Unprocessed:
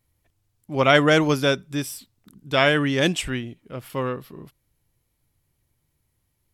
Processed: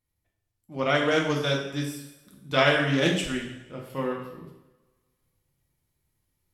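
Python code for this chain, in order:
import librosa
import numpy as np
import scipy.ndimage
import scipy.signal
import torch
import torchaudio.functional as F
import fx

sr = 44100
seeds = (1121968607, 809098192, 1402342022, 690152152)

y = fx.transient(x, sr, attack_db=0, sustain_db=-6)
y = fx.rider(y, sr, range_db=10, speed_s=2.0)
y = fx.rev_double_slope(y, sr, seeds[0], early_s=0.82, late_s=2.1, knee_db=-24, drr_db=-1.0)
y = fx.doppler_dist(y, sr, depth_ms=0.13)
y = F.gain(torch.from_numpy(y), -8.0).numpy()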